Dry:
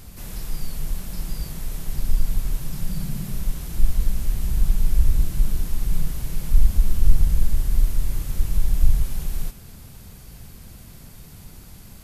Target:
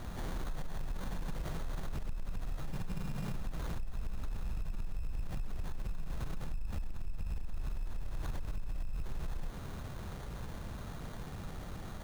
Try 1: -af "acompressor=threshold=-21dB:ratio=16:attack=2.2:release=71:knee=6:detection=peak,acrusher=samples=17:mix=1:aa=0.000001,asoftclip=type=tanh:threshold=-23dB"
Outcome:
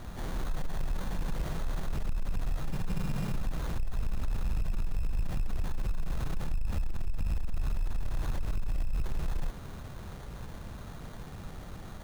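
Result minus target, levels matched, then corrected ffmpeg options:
downward compressor: peak gain reduction −10 dB
-af "acompressor=threshold=-31.5dB:ratio=16:attack=2.2:release=71:knee=6:detection=peak,acrusher=samples=17:mix=1:aa=0.000001,asoftclip=type=tanh:threshold=-23dB"

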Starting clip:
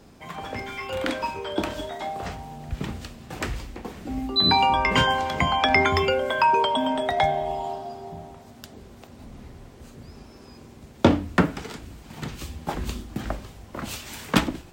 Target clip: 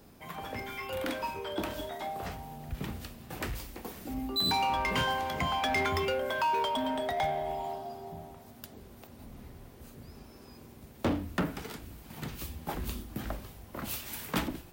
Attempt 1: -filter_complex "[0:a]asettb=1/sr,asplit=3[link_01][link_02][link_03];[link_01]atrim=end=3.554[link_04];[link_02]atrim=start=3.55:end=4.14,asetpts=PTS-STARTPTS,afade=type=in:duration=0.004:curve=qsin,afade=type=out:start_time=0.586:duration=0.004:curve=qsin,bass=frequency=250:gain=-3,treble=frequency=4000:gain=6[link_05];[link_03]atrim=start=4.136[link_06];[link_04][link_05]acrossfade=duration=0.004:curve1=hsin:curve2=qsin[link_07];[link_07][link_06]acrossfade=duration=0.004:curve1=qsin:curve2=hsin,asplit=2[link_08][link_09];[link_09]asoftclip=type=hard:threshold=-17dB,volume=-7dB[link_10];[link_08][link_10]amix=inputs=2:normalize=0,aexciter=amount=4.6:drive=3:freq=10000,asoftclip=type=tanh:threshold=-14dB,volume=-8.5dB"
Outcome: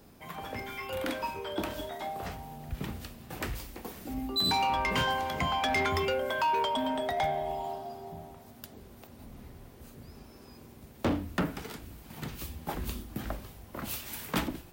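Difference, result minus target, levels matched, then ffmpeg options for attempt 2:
hard clipping: distortion −8 dB
-filter_complex "[0:a]asettb=1/sr,asplit=3[link_01][link_02][link_03];[link_01]atrim=end=3.554[link_04];[link_02]atrim=start=3.55:end=4.14,asetpts=PTS-STARTPTS,afade=type=in:duration=0.004:curve=qsin,afade=type=out:start_time=0.586:duration=0.004:curve=qsin,bass=frequency=250:gain=-3,treble=frequency=4000:gain=6[link_05];[link_03]atrim=start=4.136[link_06];[link_04][link_05]acrossfade=duration=0.004:curve1=hsin:curve2=qsin[link_07];[link_07][link_06]acrossfade=duration=0.004:curve1=qsin:curve2=hsin,asplit=2[link_08][link_09];[link_09]asoftclip=type=hard:threshold=-27dB,volume=-7dB[link_10];[link_08][link_10]amix=inputs=2:normalize=0,aexciter=amount=4.6:drive=3:freq=10000,asoftclip=type=tanh:threshold=-14dB,volume=-8.5dB"

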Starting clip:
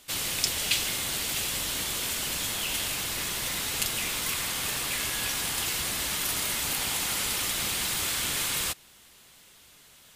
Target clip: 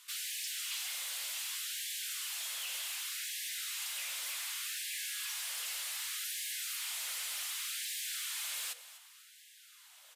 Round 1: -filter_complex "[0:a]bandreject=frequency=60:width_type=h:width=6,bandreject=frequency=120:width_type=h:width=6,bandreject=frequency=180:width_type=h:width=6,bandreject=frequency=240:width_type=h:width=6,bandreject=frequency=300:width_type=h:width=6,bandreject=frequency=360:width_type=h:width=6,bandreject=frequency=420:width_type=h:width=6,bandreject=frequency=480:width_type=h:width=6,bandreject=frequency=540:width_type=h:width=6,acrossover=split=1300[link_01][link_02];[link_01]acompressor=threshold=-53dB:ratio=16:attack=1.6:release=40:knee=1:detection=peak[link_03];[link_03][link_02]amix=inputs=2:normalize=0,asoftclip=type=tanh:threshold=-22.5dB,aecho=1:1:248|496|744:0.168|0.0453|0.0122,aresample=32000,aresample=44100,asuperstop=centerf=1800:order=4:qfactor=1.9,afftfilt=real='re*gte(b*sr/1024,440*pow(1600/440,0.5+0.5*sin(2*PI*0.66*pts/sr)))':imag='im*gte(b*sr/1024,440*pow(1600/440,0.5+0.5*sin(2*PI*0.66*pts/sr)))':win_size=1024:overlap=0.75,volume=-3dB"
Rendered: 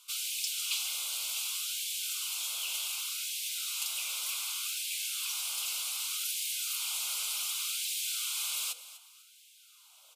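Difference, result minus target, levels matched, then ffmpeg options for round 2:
soft clipping: distortion −9 dB; 2,000 Hz band −4.0 dB
-filter_complex "[0:a]bandreject=frequency=60:width_type=h:width=6,bandreject=frequency=120:width_type=h:width=6,bandreject=frequency=180:width_type=h:width=6,bandreject=frequency=240:width_type=h:width=6,bandreject=frequency=300:width_type=h:width=6,bandreject=frequency=360:width_type=h:width=6,bandreject=frequency=420:width_type=h:width=6,bandreject=frequency=480:width_type=h:width=6,bandreject=frequency=540:width_type=h:width=6,acrossover=split=1300[link_01][link_02];[link_01]acompressor=threshold=-53dB:ratio=16:attack=1.6:release=40:knee=1:detection=peak[link_03];[link_03][link_02]amix=inputs=2:normalize=0,asoftclip=type=tanh:threshold=-33.5dB,aecho=1:1:248|496|744:0.168|0.0453|0.0122,aresample=32000,aresample=44100,afftfilt=real='re*gte(b*sr/1024,440*pow(1600/440,0.5+0.5*sin(2*PI*0.66*pts/sr)))':imag='im*gte(b*sr/1024,440*pow(1600/440,0.5+0.5*sin(2*PI*0.66*pts/sr)))':win_size=1024:overlap=0.75,volume=-3dB"

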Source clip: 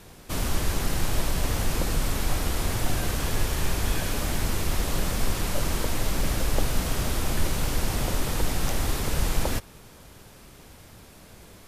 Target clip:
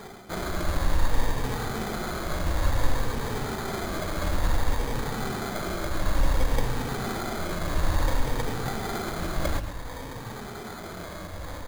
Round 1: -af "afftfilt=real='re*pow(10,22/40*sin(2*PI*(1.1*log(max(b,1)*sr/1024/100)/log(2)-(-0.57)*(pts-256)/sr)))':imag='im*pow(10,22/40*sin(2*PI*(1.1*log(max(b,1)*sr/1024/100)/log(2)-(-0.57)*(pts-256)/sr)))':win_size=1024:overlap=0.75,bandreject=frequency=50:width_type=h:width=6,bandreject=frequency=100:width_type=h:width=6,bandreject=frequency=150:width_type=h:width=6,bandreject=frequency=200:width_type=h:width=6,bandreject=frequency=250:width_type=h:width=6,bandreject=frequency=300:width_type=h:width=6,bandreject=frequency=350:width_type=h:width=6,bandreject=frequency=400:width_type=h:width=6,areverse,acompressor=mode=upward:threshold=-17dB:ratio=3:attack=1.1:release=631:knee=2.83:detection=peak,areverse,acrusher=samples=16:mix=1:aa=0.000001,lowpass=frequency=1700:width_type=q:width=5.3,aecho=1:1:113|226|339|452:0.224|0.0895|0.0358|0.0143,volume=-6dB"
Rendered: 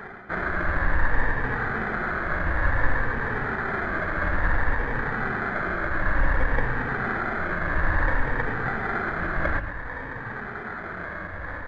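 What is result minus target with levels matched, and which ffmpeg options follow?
2,000 Hz band +8.0 dB
-af "afftfilt=real='re*pow(10,22/40*sin(2*PI*(1.1*log(max(b,1)*sr/1024/100)/log(2)-(-0.57)*(pts-256)/sr)))':imag='im*pow(10,22/40*sin(2*PI*(1.1*log(max(b,1)*sr/1024/100)/log(2)-(-0.57)*(pts-256)/sr)))':win_size=1024:overlap=0.75,bandreject=frequency=50:width_type=h:width=6,bandreject=frequency=100:width_type=h:width=6,bandreject=frequency=150:width_type=h:width=6,bandreject=frequency=200:width_type=h:width=6,bandreject=frequency=250:width_type=h:width=6,bandreject=frequency=300:width_type=h:width=6,bandreject=frequency=350:width_type=h:width=6,bandreject=frequency=400:width_type=h:width=6,areverse,acompressor=mode=upward:threshold=-17dB:ratio=3:attack=1.1:release=631:knee=2.83:detection=peak,areverse,acrusher=samples=16:mix=1:aa=0.000001,aecho=1:1:113|226|339|452:0.224|0.0895|0.0358|0.0143,volume=-6dB"

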